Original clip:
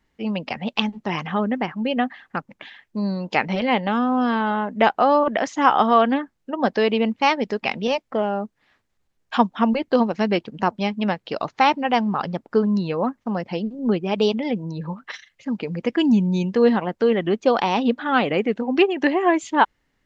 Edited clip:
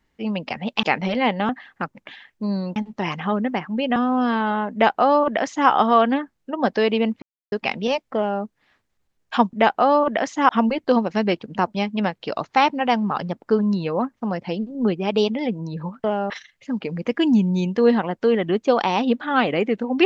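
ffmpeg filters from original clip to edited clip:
-filter_complex "[0:a]asplit=11[a][b][c][d][e][f][g][h][i][j][k];[a]atrim=end=0.832[l];[b]atrim=start=3.298:end=3.962[m];[c]atrim=start=2.028:end=3.302[n];[d]atrim=start=0.828:end=2.032[o];[e]atrim=start=3.958:end=7.22,asetpts=PTS-STARTPTS,afade=t=out:st=3.258:d=0.004:c=hsin[p];[f]atrim=start=7.22:end=7.52,asetpts=PTS-STARTPTS,volume=0[q];[g]atrim=start=7.52:end=9.532,asetpts=PTS-STARTPTS,afade=t=in:d=0.004:c=hsin[r];[h]atrim=start=4.728:end=5.692[s];[i]atrim=start=9.528:end=15.082[t];[j]atrim=start=8.158:end=8.422[u];[k]atrim=start=15.078[v];[l][m]acrossfade=d=0.004:c1=hsin:c2=hsin[w];[w][n]acrossfade=d=0.004:c1=hsin:c2=hsin[x];[x][o]acrossfade=d=0.004:c1=hsin:c2=hsin[y];[p][q][r]concat=n=3:v=0:a=1[z];[y][z]acrossfade=d=0.004:c1=hsin:c2=hsin[aa];[aa][s]acrossfade=d=0.004:c1=hsin:c2=hsin[ab];[ab][t]acrossfade=d=0.004:c1=hsin:c2=hsin[ac];[ac][u]acrossfade=d=0.004:c1=hsin:c2=hsin[ad];[ad][v]acrossfade=d=0.004:c1=hsin:c2=hsin"

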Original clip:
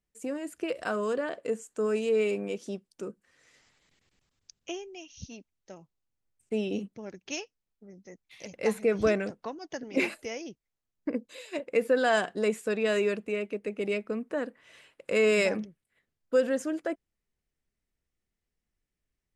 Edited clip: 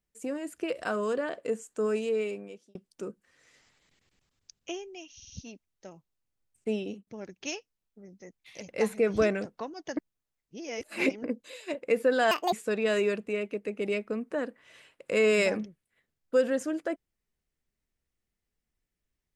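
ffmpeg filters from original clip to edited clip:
-filter_complex "[0:a]asplit=10[a][b][c][d][e][f][g][h][i][j];[a]atrim=end=2.75,asetpts=PTS-STARTPTS,afade=t=out:st=1.87:d=0.88[k];[b]atrim=start=2.75:end=5.202,asetpts=PTS-STARTPTS,afade=t=in:d=0.004:c=hsin[l];[c]atrim=start=5.148:end=5.202[m];[d]atrim=start=5.148:end=5.202[n];[e]atrim=start=5.148:end=6.92,asetpts=PTS-STARTPTS,afade=t=out:st=1.412:d=0.36:silence=0.0668344[o];[f]atrim=start=6.92:end=9.822,asetpts=PTS-STARTPTS,afade=t=in:d=0.004:c=hsin:silence=0.0668344[p];[g]atrim=start=9.818:end=11.092,asetpts=PTS-STARTPTS,areverse[q];[h]atrim=start=11.088:end=12.164[r];[i]atrim=start=12.16:end=12.52,asetpts=PTS-STARTPTS,asetrate=73647,aresample=44100[s];[j]atrim=start=12.516[t];[k][l]concat=n=2:v=0:a=1[u];[u][m]acrossfade=d=0.004:c1=hsin:c2=hsin[v];[v][n]acrossfade=d=0.004:c1=hsin:c2=hsin[w];[o][p]concat=n=2:v=0:a=1[x];[w][x]acrossfade=d=0.004:c1=hsin:c2=hsin[y];[y][q]acrossfade=d=0.004:c1=hsin:c2=hsin[z];[z][r]acrossfade=d=0.004:c1=hsin:c2=hsin[aa];[aa][s]acrossfade=d=0.004:c1=hsin:c2=hsin[ab];[ab][t]acrossfade=d=0.004:c1=hsin:c2=hsin"

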